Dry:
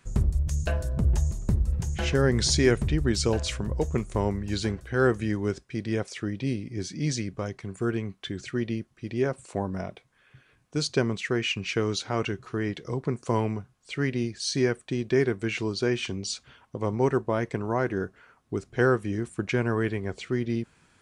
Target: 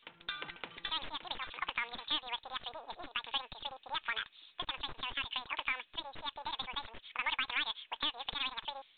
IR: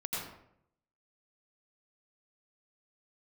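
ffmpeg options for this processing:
-af "dynaudnorm=f=220:g=7:m=3.16,highpass=1300,aeval=exprs='(tanh(3.98*val(0)+0.65)-tanh(0.65))/3.98':c=same,acompressor=threshold=0.0126:ratio=4,asetrate=103194,aresample=44100,volume=2.37" -ar 8000 -c:a pcm_mulaw

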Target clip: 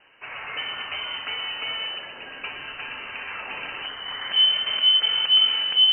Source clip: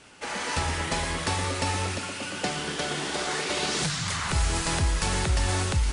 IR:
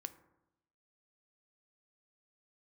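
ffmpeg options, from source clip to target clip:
-filter_complex "[0:a]asubboost=boost=7:cutoff=61,lowpass=f=2600:t=q:w=0.5098,lowpass=f=2600:t=q:w=0.6013,lowpass=f=2600:t=q:w=0.9,lowpass=f=2600:t=q:w=2.563,afreqshift=-3100[s0];[1:a]atrim=start_sample=2205,asetrate=35280,aresample=44100[s1];[s0][s1]afir=irnorm=-1:irlink=0"

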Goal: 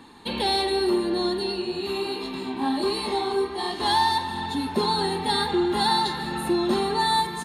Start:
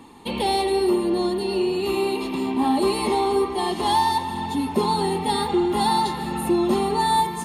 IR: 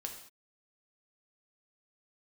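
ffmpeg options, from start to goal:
-filter_complex "[0:a]equalizer=f=1600:t=o:w=0.33:g=12,equalizer=f=4000:t=o:w=0.33:g=10,equalizer=f=12500:t=o:w=0.33:g=-4,asplit=3[s0][s1][s2];[s0]afade=t=out:st=1.51:d=0.02[s3];[s1]flanger=delay=19.5:depth=6.5:speed=1.3,afade=t=in:st=1.51:d=0.02,afade=t=out:st=3.8:d=0.02[s4];[s2]afade=t=in:st=3.8:d=0.02[s5];[s3][s4][s5]amix=inputs=3:normalize=0,asplit=2[s6][s7];[s7]adelay=48,volume=0.2[s8];[s6][s8]amix=inputs=2:normalize=0,volume=0.708"

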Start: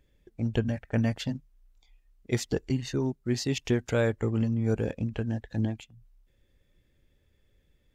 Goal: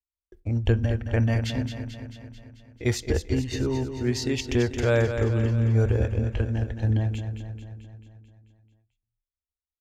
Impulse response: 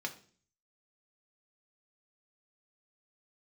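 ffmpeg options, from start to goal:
-filter_complex "[0:a]agate=range=0.00355:threshold=0.00158:ratio=16:detection=peak,atempo=0.81,lowshelf=f=110:t=q:w=3:g=9.5,aecho=1:1:220|440|660|880|1100|1320|1540|1760:0.376|0.226|0.135|0.0812|0.0487|0.0292|0.0175|0.0105,asplit=2[s0][s1];[1:a]atrim=start_sample=2205[s2];[s1][s2]afir=irnorm=-1:irlink=0,volume=0.237[s3];[s0][s3]amix=inputs=2:normalize=0,volume=1.19"

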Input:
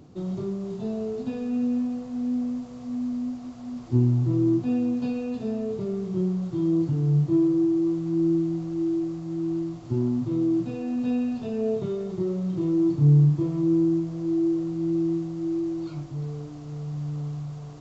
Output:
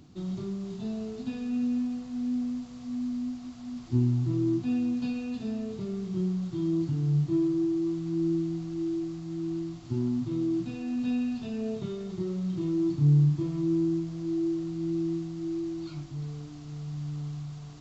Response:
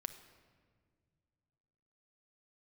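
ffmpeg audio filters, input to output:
-af "equalizer=f=125:t=o:w=1:g=-4,equalizer=f=500:t=o:w=1:g=-11,equalizer=f=1000:t=o:w=1:g=-3,equalizer=f=4000:t=o:w=1:g=3"

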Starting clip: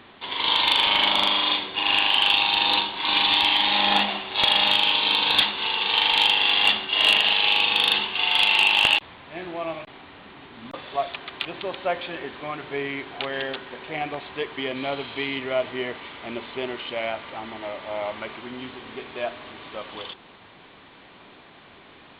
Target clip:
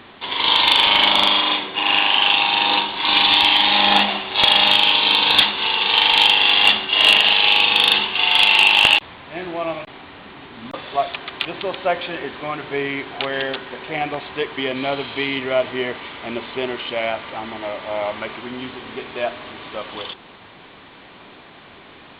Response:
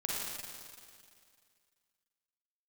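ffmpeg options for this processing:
-filter_complex "[0:a]asettb=1/sr,asplit=3[s0][s1][s2];[s0]atrim=end=1.414[s3];[s1]atrim=start=1.41:end=2.89,asetpts=PTS-STARTPTS,afade=t=in:d=0.004:c=qsin,afade=t=out:st=1.476:d=0.004:c=qsin,highpass=110,lowpass=3400[s4];[s2]atrim=start=2.886[s5];[s3][s4]acrossfade=d=0.004:c1=hsin:c2=qsin[s6];[s6][s5]acrossfade=d=0.004:c1=qsin:c2=hsin,volume=1.88"

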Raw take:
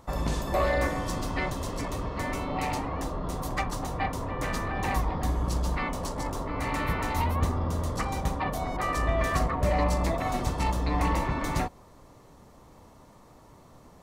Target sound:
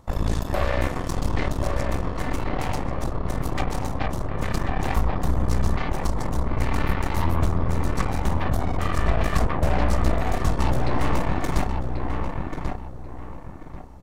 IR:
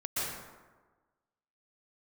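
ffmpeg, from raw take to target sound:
-filter_complex "[0:a]lowshelf=f=210:g=8,aeval=exprs='0.398*(cos(1*acos(clip(val(0)/0.398,-1,1)))-cos(1*PI/2))+0.0794*(cos(8*acos(clip(val(0)/0.398,-1,1)))-cos(8*PI/2))':c=same,asplit=2[s0][s1];[s1]adelay=1088,lowpass=f=2000:p=1,volume=0.631,asplit=2[s2][s3];[s3]adelay=1088,lowpass=f=2000:p=1,volume=0.32,asplit=2[s4][s5];[s5]adelay=1088,lowpass=f=2000:p=1,volume=0.32,asplit=2[s6][s7];[s7]adelay=1088,lowpass=f=2000:p=1,volume=0.32[s8];[s0][s2][s4][s6][s8]amix=inputs=5:normalize=0,volume=0.668"

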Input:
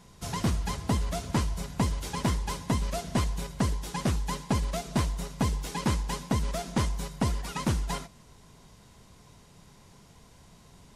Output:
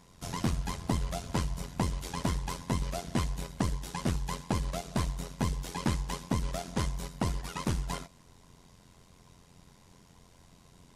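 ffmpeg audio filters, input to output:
-af "tremolo=f=88:d=0.75"

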